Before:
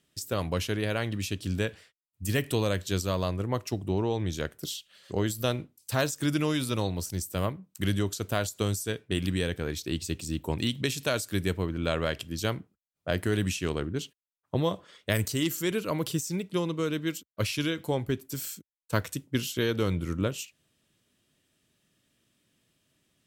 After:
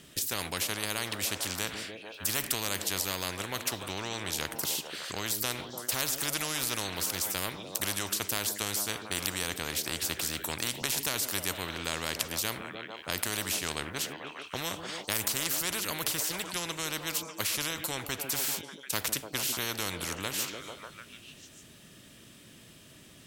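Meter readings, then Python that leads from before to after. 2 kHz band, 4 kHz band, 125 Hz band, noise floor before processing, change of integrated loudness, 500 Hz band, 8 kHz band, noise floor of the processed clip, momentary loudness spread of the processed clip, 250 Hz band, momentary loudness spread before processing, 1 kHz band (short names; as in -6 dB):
+1.0 dB, +3.5 dB, -12.5 dB, -84 dBFS, -1.0 dB, -9.0 dB, +7.0 dB, -54 dBFS, 7 LU, -10.5 dB, 6 LU, -0.5 dB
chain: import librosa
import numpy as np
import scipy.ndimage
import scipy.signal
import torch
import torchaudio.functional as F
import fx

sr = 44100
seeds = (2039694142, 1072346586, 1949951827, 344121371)

y = fx.echo_stepped(x, sr, ms=148, hz=260.0, octaves=0.7, feedback_pct=70, wet_db=-11.5)
y = fx.spectral_comp(y, sr, ratio=4.0)
y = F.gain(torch.from_numpy(y), 5.0).numpy()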